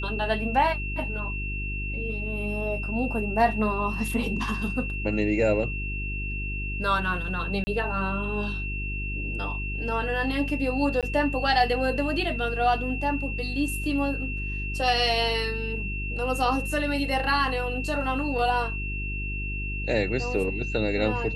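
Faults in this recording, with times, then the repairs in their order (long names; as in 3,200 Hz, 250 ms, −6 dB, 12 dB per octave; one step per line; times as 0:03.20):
mains hum 50 Hz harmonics 8 −32 dBFS
whistle 2,700 Hz −33 dBFS
0:07.64–0:07.67: drop-out 30 ms
0:11.01–0:11.03: drop-out 17 ms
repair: notch filter 2,700 Hz, Q 30
hum removal 50 Hz, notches 8
repair the gap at 0:07.64, 30 ms
repair the gap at 0:11.01, 17 ms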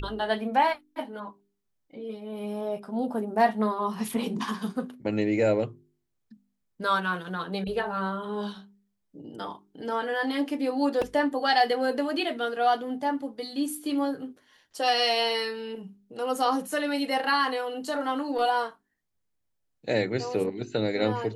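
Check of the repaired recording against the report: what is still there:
none of them is left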